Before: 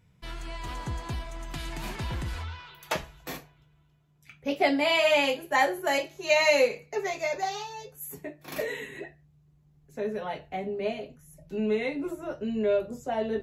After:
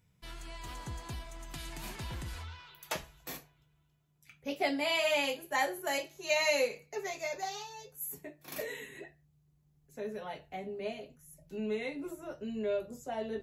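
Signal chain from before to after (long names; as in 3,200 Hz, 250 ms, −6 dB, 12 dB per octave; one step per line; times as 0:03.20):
high-shelf EQ 5,200 Hz +9.5 dB
level −8 dB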